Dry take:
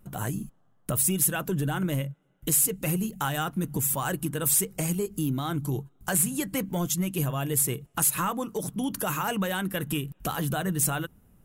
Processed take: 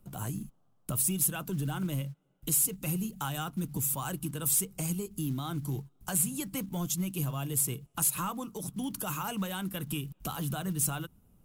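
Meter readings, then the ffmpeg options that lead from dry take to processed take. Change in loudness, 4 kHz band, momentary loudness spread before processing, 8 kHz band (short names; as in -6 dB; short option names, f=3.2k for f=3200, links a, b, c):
-4.5 dB, -4.5 dB, 10 LU, -4.0 dB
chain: -filter_complex "[0:a]acrossover=split=350|690|4800[a][b][c][d];[b]acompressor=threshold=-52dB:ratio=6[e];[a][e][c][d]amix=inputs=4:normalize=0,equalizer=f=1.8k:w=2.9:g=-10,acrusher=bits=7:mode=log:mix=0:aa=0.000001,volume=-3.5dB" -ar 44100 -c:a libmp3lame -b:a 128k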